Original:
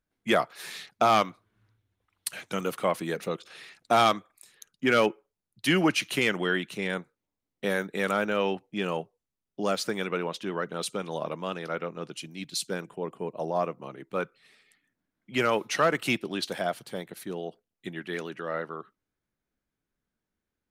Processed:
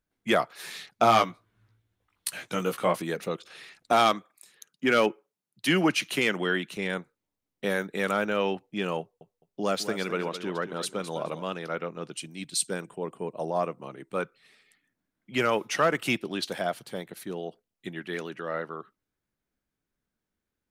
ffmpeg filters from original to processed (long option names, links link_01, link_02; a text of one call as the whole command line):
ffmpeg -i in.wav -filter_complex "[0:a]asettb=1/sr,asplit=3[link_01][link_02][link_03];[link_01]atrim=end=0.964[link_04];[link_02]atrim=start=0.96:end=3.02,asetpts=PTS-STARTPTS,afade=type=in:duration=0.004:curve=qsin,afade=type=out:start_time=2.056:duration=0.004:curve=qsin,asplit=2[link_05][link_06];[link_06]adelay=17,volume=-4.5dB[link_07];[link_05][link_07]amix=inputs=2:normalize=0,atrim=end_sample=90846[link_08];[link_03]atrim=start=3.016[link_09];[link_04][link_08]acrossfade=duration=0.004:curve1=hsin:curve2=qsin[link_10];[link_10][link_09]acrossfade=duration=0.004:curve1=qsin:curve2=hsin,asettb=1/sr,asplit=3[link_11][link_12][link_13];[link_11]atrim=end=3.924[link_14];[link_12]atrim=start=3.92:end=6.77,asetpts=PTS-STARTPTS,afade=type=in:duration=0.004:curve=qsin,afade=type=out:start_time=2.846:duration=0.004:curve=qsin,highpass=frequency=130:width=0.5412,highpass=frequency=130:width=1.3066[link_15];[link_13]atrim=start=6.766[link_16];[link_14][link_15]acrossfade=duration=0.004:curve1=hsin:curve2=qsin[link_17];[link_17][link_16]acrossfade=duration=0.004:curve1=qsin:curve2=hsin,asettb=1/sr,asplit=3[link_18][link_19][link_20];[link_18]atrim=end=9.004[link_21];[link_19]atrim=start=9:end=11.43,asetpts=PTS-STARTPTS,afade=type=in:duration=0.004:curve=qsin,afade=type=out:start_time=2.426:duration=0.004:curve=qsin,aecho=1:1:210|420|630:0.266|0.0559|0.0117,atrim=end_sample=107163[link_22];[link_20]atrim=start=11.426[link_23];[link_21][link_22]acrossfade=duration=0.004:curve1=hsin:curve2=qsin[link_24];[link_24][link_23]acrossfade=duration=0.004:curve1=qsin:curve2=hsin,asettb=1/sr,asplit=3[link_25][link_26][link_27];[link_25]atrim=end=12.174[link_28];[link_26]atrim=start=12.17:end=14.22,asetpts=PTS-STARTPTS,afade=type=in:duration=0.004:curve=qsin,afade=type=out:start_time=2.046:duration=0.004:curve=qsin,equalizer=frequency=8500:width=6.7:gain=13[link_29];[link_27]atrim=start=14.216[link_30];[link_28][link_29]acrossfade=duration=0.004:curve1=hsin:curve2=qsin[link_31];[link_31][link_30]acrossfade=duration=0.004:curve1=qsin:curve2=hsin,asettb=1/sr,asplit=3[link_32][link_33][link_34];[link_32]atrim=end=15.434[link_35];[link_33]atrim=start=15.43:end=16.18,asetpts=PTS-STARTPTS,afade=type=in:duration=0.004:curve=qsin,afade=type=out:start_time=0.746:duration=0.004:curve=qsin,bandreject=frequency=4100:width=12[link_36];[link_34]atrim=start=16.176[link_37];[link_35][link_36]acrossfade=duration=0.004:curve1=hsin:curve2=qsin[link_38];[link_38][link_37]acrossfade=duration=0.004:curve1=qsin:curve2=hsin" out.wav